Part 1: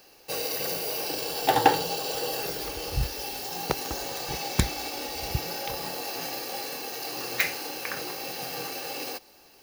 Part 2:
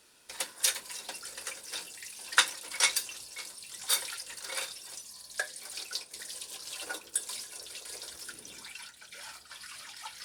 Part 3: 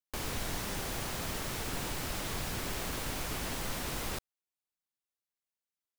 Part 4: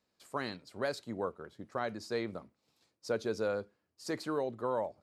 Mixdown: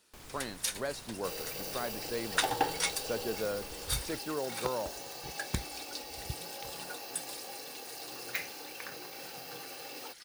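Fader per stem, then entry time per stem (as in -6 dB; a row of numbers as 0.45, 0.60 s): -10.5, -6.5, -14.5, -2.0 dB; 0.95, 0.00, 0.00, 0.00 s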